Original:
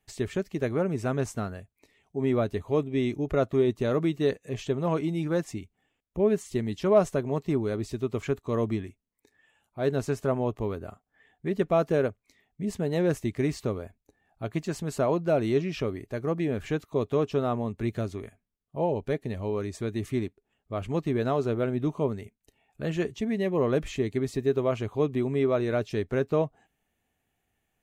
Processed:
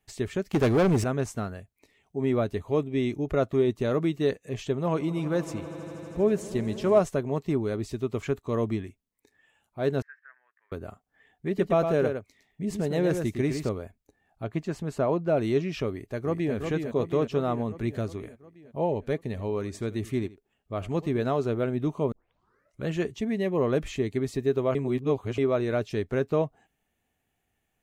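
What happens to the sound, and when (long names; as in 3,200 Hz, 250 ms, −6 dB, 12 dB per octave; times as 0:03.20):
0:00.51–0:01.04: leveller curve on the samples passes 3
0:04.77–0:07.00: echo that builds up and dies away 80 ms, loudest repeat 5, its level −18 dB
0:10.02–0:10.72: flat-topped band-pass 1,700 Hz, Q 5.4
0:11.47–0:13.69: single-tap delay 110 ms −6.5 dB
0:14.44–0:15.37: high-shelf EQ 3,800 Hz −10 dB
0:15.89–0:16.55: delay throw 360 ms, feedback 65%, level −5.5 dB
0:19.18–0:21.27: single-tap delay 83 ms −18.5 dB
0:22.12: tape start 0.75 s
0:24.75–0:25.38: reverse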